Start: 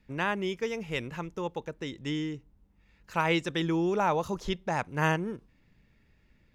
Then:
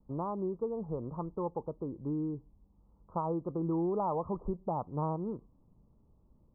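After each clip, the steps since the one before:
downward compressor 2.5 to 1, threshold −30 dBFS, peak gain reduction 7 dB
Butterworth low-pass 1,200 Hz 96 dB per octave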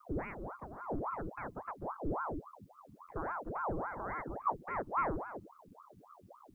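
drawn EQ curve 140 Hz 0 dB, 210 Hz −16 dB, 560 Hz −22 dB, 1,200 Hz −12 dB, 1,700 Hz +8 dB
ring modulator whose carrier an LFO sweeps 690 Hz, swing 80%, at 3.6 Hz
level +9.5 dB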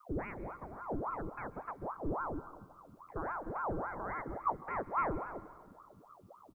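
single-tap delay 237 ms −21.5 dB
on a send at −17 dB: convolution reverb RT60 1.7 s, pre-delay 123 ms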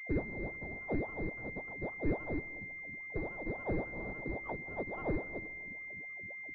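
running median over 41 samples
switching amplifier with a slow clock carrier 2,100 Hz
level +4.5 dB

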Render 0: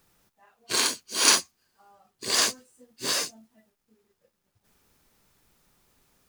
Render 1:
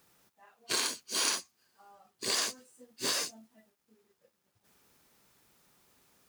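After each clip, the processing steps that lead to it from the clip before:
high-pass filter 160 Hz 6 dB per octave
downward compressor 6 to 1, threshold −28 dBFS, peak gain reduction 13.5 dB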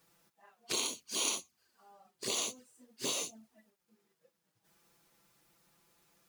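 flanger swept by the level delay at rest 6.5 ms, full sweep at −33 dBFS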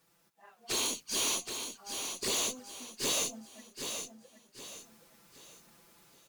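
tube saturation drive 37 dB, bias 0.3
automatic gain control gain up to 9 dB
on a send: repeating echo 773 ms, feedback 36%, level −7 dB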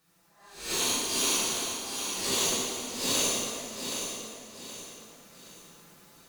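peak hold with a rise ahead of every peak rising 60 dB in 0.51 s
dense smooth reverb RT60 2.4 s, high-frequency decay 0.7×, DRR −8 dB
level −4.5 dB

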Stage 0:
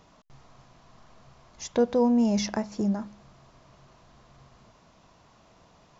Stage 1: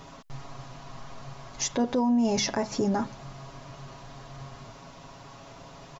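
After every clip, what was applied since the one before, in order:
comb filter 7.3 ms, depth 68%
in parallel at +1 dB: downward compressor, threshold −33 dBFS, peak gain reduction 14 dB
on the sum: brickwall limiter −20.5 dBFS, peak gain reduction 9 dB
level +3 dB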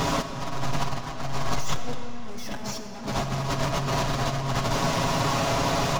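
leveller curve on the samples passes 5
compressor whose output falls as the input rises −28 dBFS, ratio −0.5
comb and all-pass reverb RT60 4 s, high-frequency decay 0.75×, pre-delay 15 ms, DRR 6.5 dB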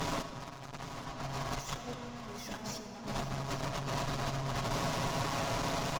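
tube saturation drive 22 dB, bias 0.6
on a send: single-tap delay 827 ms −11 dB
on the sum: level −6 dB

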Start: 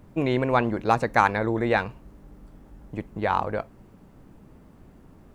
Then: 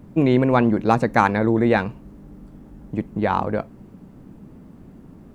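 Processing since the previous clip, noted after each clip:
parametric band 210 Hz +9 dB 1.9 octaves
level +1 dB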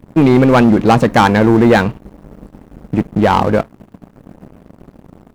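leveller curve on the samples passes 3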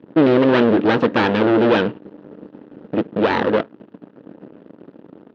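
wavefolder on the positive side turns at −13 dBFS
loudspeaker in its box 240–3,500 Hz, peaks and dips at 310 Hz +5 dB, 460 Hz +4 dB, 740 Hz −6 dB, 1,100 Hz −5 dB, 2,200 Hz −7 dB

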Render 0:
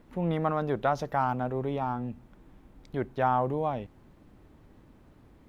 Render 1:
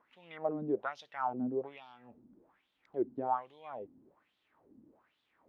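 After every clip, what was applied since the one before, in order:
dynamic equaliser 1,300 Hz, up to −5 dB, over −41 dBFS, Q 1.3
LFO wah 1.2 Hz 240–3,600 Hz, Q 4.4
level +3 dB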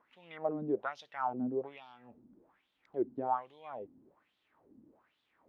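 no processing that can be heard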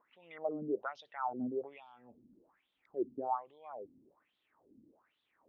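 spectral envelope exaggerated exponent 1.5
level −2.5 dB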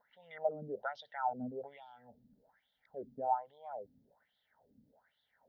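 phaser with its sweep stopped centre 1,700 Hz, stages 8
level +4 dB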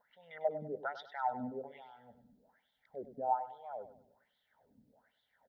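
repeating echo 99 ms, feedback 35%, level −12.5 dB

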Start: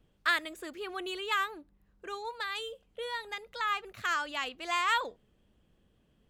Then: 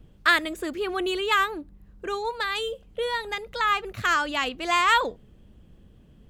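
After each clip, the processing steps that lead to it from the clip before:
low-shelf EQ 330 Hz +10.5 dB
level +7.5 dB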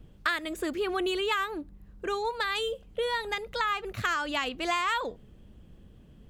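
downward compressor 6 to 1, threshold −25 dBFS, peak gain reduction 10.5 dB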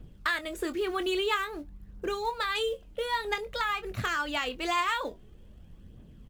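in parallel at −7.5 dB: floating-point word with a short mantissa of 2 bits
on the sum: phase shifter 0.5 Hz, delay 3.6 ms, feedback 38%
double-tracking delay 24 ms −11 dB
level −4.5 dB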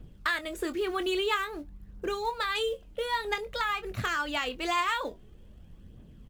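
no processing that can be heard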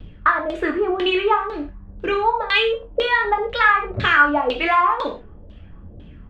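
auto-filter low-pass saw down 2 Hz 520–3,700 Hz
reverb whose tail is shaped and stops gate 150 ms falling, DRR 2.5 dB
pitch vibrato 0.42 Hz 9.1 cents
level +8 dB

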